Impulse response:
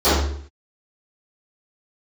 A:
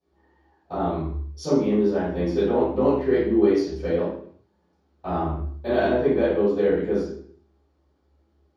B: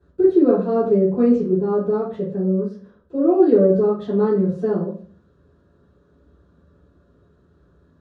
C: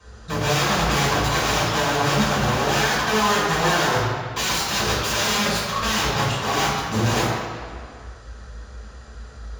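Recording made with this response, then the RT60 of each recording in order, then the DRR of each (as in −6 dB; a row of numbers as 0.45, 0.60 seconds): A; 0.60, 0.40, 2.0 seconds; −20.5, −14.0, −11.0 decibels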